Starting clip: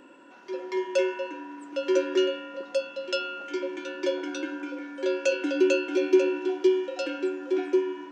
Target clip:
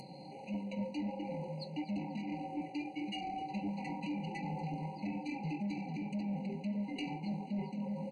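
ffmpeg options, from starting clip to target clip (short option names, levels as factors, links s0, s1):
-filter_complex "[0:a]highpass=f=290:p=1,aemphasis=mode=production:type=75kf,acompressor=mode=upward:threshold=0.00562:ratio=2.5,alimiter=limit=0.0891:level=0:latency=1:release=325,areverse,acompressor=threshold=0.0224:ratio=12,areverse,flanger=delay=4.7:depth=5.1:regen=-3:speed=1.6:shape=sinusoidal,asoftclip=type=tanh:threshold=0.0126,asplit=4[s0][s1][s2][s3];[s1]adelay=242,afreqshift=80,volume=0.188[s4];[s2]adelay=484,afreqshift=160,volume=0.0676[s5];[s3]adelay=726,afreqshift=240,volume=0.0245[s6];[s0][s4][s5][s6]amix=inputs=4:normalize=0,asetrate=24046,aresample=44100,atempo=1.83401,aresample=22050,aresample=44100,afftfilt=real='re*eq(mod(floor(b*sr/1024/980),2),0)':imag='im*eq(mod(floor(b*sr/1024/980),2),0)':win_size=1024:overlap=0.75,volume=1.88"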